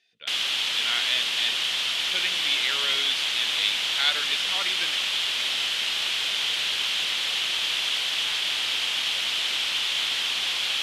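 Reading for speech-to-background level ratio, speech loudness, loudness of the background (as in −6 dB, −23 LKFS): −4.5 dB, −28.0 LKFS, −23.5 LKFS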